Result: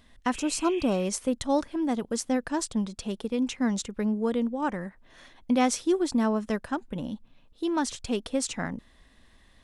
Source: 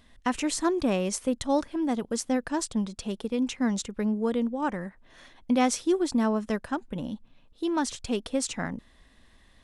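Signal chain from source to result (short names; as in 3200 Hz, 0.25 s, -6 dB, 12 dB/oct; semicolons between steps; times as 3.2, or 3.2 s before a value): spectral repair 0.38–1.03, 1600–3700 Hz after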